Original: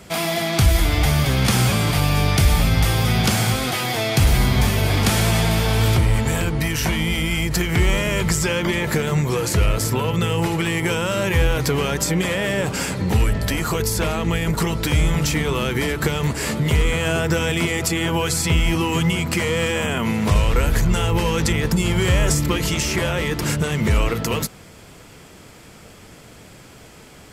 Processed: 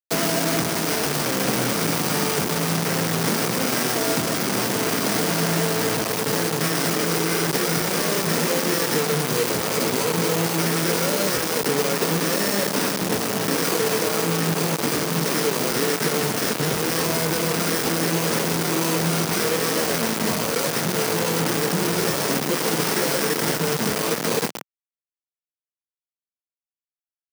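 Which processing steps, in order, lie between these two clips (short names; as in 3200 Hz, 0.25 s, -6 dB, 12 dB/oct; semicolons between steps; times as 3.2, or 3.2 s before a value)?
low shelf 430 Hz -10.5 dB; notch 4400 Hz, Q 6.6; sample-rate reducer 3600 Hz, jitter 0%; band shelf 1600 Hz -9.5 dB 2.7 oct; soft clip -18 dBFS, distortion -20 dB; doubler 25 ms -10 dB; feedback echo 0.12 s, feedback 54%, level -11 dB; reverb RT60 0.50 s, pre-delay 4 ms, DRR 8.5 dB; compressor 10:1, threshold -26 dBFS, peak gain reduction 7 dB; bit-crush 5-bit; HPF 150 Hz 24 dB/oct; gain +7.5 dB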